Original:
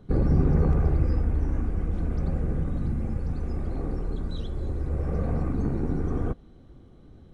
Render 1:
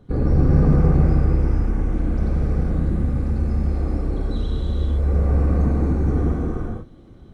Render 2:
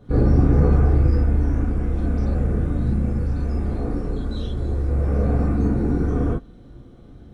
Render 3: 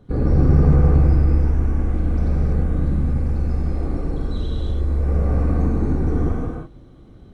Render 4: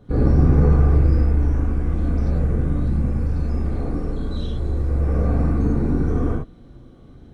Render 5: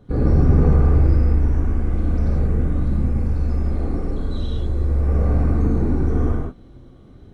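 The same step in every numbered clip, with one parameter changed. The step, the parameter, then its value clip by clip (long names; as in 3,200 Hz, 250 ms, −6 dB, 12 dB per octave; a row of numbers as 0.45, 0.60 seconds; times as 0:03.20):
reverb whose tail is shaped and stops, gate: 530, 80, 360, 130, 210 milliseconds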